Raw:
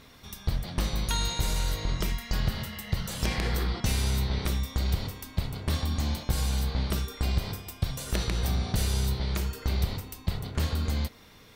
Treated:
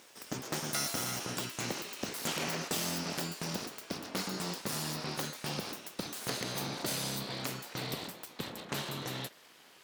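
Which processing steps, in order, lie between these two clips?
speed glide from 151% -> 84%; full-wave rectifier; Bessel high-pass 300 Hz, order 2

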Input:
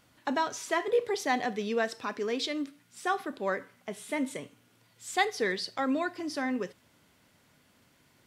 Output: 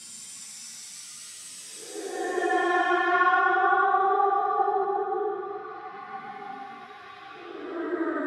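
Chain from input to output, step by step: treble ducked by the level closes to 1400 Hz, closed at -25 dBFS; Paulstretch 27×, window 0.05 s, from 2.97; ensemble effect; gain +8 dB

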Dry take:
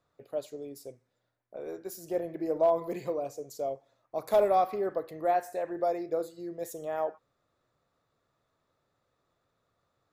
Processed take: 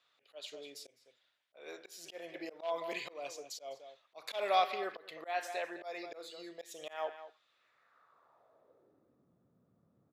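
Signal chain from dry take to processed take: outdoor echo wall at 35 m, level -15 dB; auto swell 0.186 s; band-pass sweep 3100 Hz -> 200 Hz, 7.49–9.28; gain +15.5 dB

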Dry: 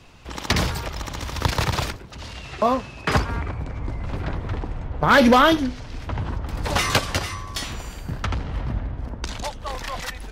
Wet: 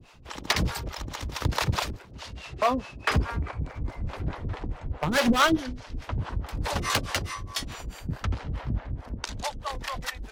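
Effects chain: 3.58–4.02 crackle 83/s -49 dBFS; wavefolder -12.5 dBFS; harmonic tremolo 4.7 Hz, depth 100%, crossover 450 Hz

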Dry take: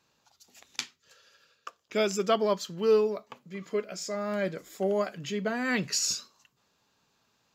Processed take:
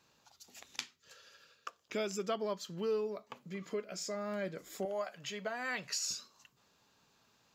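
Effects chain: 4.85–6.1 resonant low shelf 470 Hz -9.5 dB, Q 1.5; compressor 2:1, threshold -43 dBFS, peak gain reduction 13 dB; gain +1 dB

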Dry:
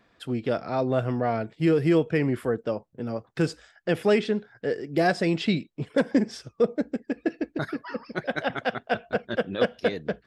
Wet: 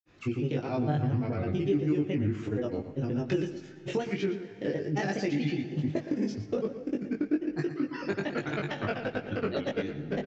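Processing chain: thirty-one-band EQ 125 Hz +9 dB, 315 Hz +11 dB, 630 Hz -3 dB, 2500 Hz +7 dB, 6300 Hz +10 dB; grains, pitch spread up and down by 3 st; compressor 6:1, threshold -30 dBFS, peak gain reduction 18.5 dB; low shelf 330 Hz +4.5 dB; doubler 20 ms -3 dB; outdoor echo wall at 20 m, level -11 dB; on a send at -15 dB: reverb RT60 3.3 s, pre-delay 76 ms; on the sum: downsampling 16000 Hz; gain -1 dB

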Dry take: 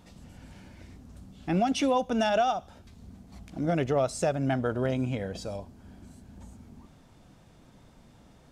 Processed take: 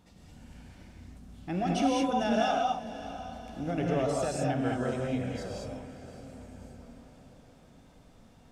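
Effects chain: on a send: diffused feedback echo 0.604 s, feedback 51%, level -14 dB; on the sum: non-linear reverb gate 0.24 s rising, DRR -2.5 dB; gain -6.5 dB

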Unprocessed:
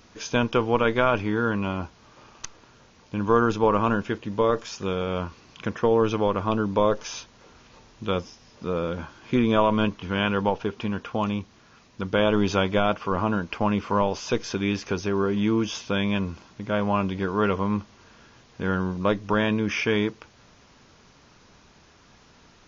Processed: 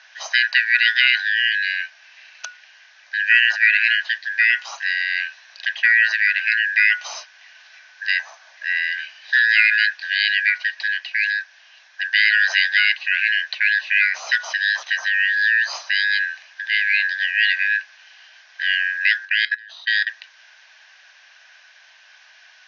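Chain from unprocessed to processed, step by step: four-band scrambler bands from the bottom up 4123; 19.25–20.07 level quantiser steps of 23 dB; Chebyshev band-pass 640–5900 Hz, order 4; gain +5.5 dB

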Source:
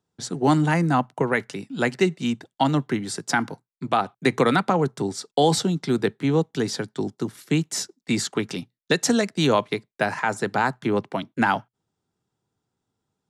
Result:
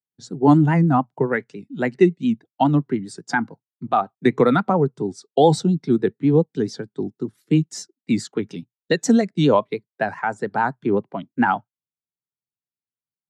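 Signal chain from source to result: vibrato 7.2 Hz 84 cents; spectral expander 1.5:1; gain +4 dB

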